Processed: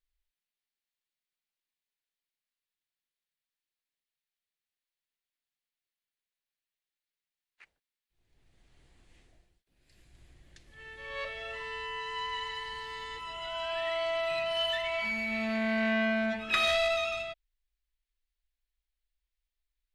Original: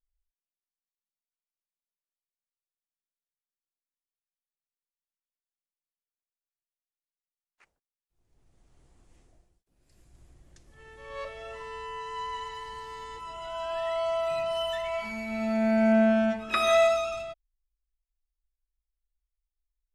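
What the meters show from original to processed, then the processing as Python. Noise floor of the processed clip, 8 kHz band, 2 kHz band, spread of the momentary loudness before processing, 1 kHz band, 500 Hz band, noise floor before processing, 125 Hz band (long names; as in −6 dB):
below −85 dBFS, −4.0 dB, +3.5 dB, 19 LU, −4.5 dB, −6.0 dB, below −85 dBFS, −6.5 dB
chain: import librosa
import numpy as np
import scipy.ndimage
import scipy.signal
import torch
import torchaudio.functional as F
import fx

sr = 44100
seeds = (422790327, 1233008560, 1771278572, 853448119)

y = 10.0 ** (-24.5 / 20.0) * np.tanh(x / 10.0 ** (-24.5 / 20.0))
y = fx.band_shelf(y, sr, hz=2700.0, db=9.0, octaves=1.7)
y = y * 10.0 ** (-2.0 / 20.0)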